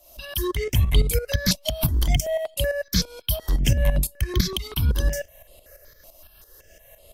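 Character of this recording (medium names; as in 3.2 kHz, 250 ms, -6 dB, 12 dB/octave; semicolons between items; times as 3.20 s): tremolo saw up 5.9 Hz, depth 70%; notches that jump at a steady rate 5.3 Hz 450–5800 Hz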